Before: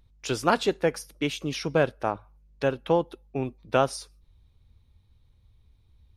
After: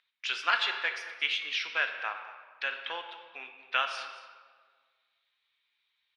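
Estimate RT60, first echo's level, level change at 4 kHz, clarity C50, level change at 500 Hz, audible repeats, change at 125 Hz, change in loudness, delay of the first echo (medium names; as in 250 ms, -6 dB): 1.6 s, -16.0 dB, +4.0 dB, 7.0 dB, -20.0 dB, 1, under -40 dB, -3.5 dB, 227 ms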